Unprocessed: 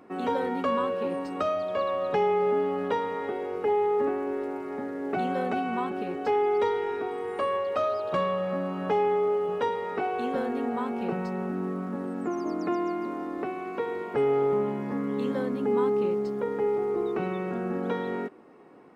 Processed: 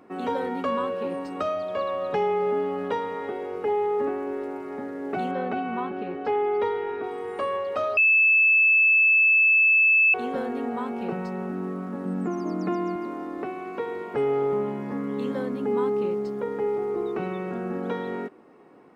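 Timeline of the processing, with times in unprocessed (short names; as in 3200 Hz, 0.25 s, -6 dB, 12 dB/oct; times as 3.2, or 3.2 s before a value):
5.31–7.04 LPF 3500 Hz
7.97–10.14 bleep 2620 Hz -15 dBFS
12.05–12.96 bell 190 Hz +11.5 dB 0.38 oct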